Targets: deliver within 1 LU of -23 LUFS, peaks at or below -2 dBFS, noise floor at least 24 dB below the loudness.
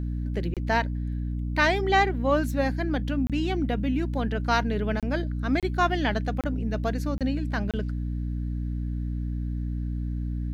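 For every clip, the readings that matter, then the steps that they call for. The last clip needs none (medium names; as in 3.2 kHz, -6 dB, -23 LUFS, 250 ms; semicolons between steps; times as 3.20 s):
dropouts 7; longest dropout 27 ms; hum 60 Hz; highest harmonic 300 Hz; hum level -27 dBFS; loudness -27.5 LUFS; peak level -8.5 dBFS; loudness target -23.0 LUFS
-> interpolate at 0.54/3.27/5.00/5.60/6.41/7.18/7.71 s, 27 ms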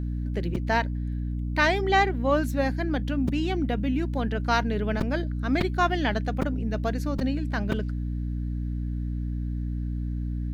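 dropouts 0; hum 60 Hz; highest harmonic 300 Hz; hum level -27 dBFS
-> de-hum 60 Hz, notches 5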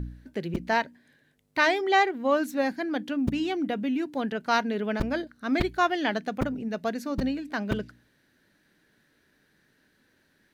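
hum not found; loudness -27.5 LUFS; peak level -9.0 dBFS; loudness target -23.0 LUFS
-> trim +4.5 dB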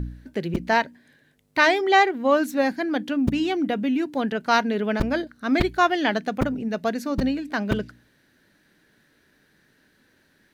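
loudness -23.0 LUFS; peak level -4.5 dBFS; noise floor -63 dBFS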